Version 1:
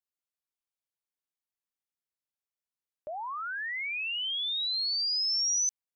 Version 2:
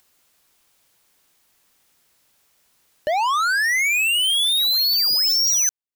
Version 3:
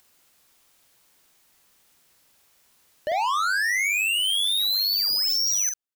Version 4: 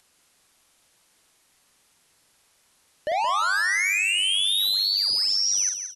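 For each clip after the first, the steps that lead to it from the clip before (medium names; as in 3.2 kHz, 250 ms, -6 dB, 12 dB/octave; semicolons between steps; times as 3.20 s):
waveshaping leveller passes 5; upward compressor, threshold -43 dBFS; trim +6.5 dB
peak limiter -23.5 dBFS, peak gain reduction 6 dB; doubling 47 ms -6 dB
brick-wall FIR low-pass 12 kHz; on a send: feedback delay 173 ms, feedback 30%, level -9 dB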